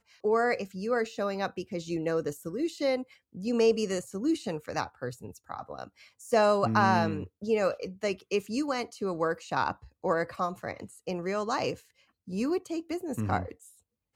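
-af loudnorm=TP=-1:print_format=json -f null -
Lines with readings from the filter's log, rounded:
"input_i" : "-30.5",
"input_tp" : "-10.6",
"input_lra" : "5.1",
"input_thresh" : "-41.1",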